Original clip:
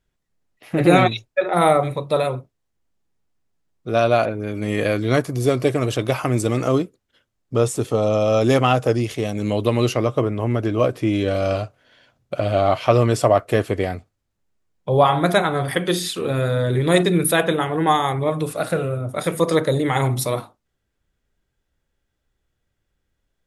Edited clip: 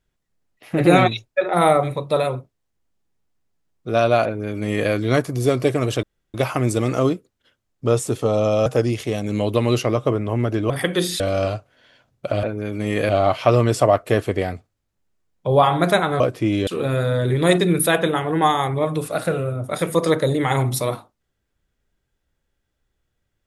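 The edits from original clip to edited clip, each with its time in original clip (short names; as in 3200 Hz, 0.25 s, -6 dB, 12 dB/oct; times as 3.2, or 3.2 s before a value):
4.25–4.91 copy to 12.51
6.03 insert room tone 0.31 s
8.35–8.77 cut
10.81–11.28 swap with 15.62–16.12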